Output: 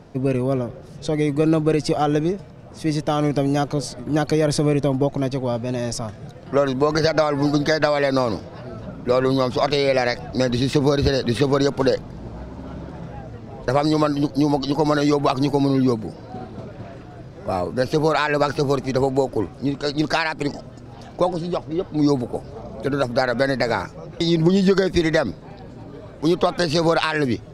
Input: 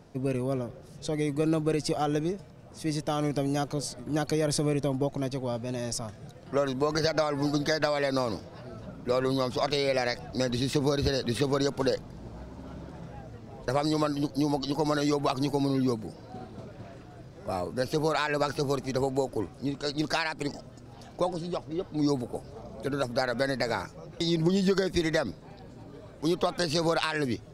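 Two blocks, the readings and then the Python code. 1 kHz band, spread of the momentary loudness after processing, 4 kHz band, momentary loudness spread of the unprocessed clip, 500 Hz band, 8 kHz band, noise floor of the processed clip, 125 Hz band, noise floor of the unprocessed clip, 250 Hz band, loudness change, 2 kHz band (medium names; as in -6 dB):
+8.5 dB, 17 LU, +5.5 dB, 17 LU, +8.5 dB, +3.0 dB, -40 dBFS, +8.5 dB, -49 dBFS, +8.5 dB, +8.0 dB, +8.0 dB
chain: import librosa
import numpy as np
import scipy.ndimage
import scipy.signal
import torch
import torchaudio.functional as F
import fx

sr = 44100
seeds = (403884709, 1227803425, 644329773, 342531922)

y = fx.high_shelf(x, sr, hz=6400.0, db=-10.0)
y = y * 10.0 ** (8.5 / 20.0)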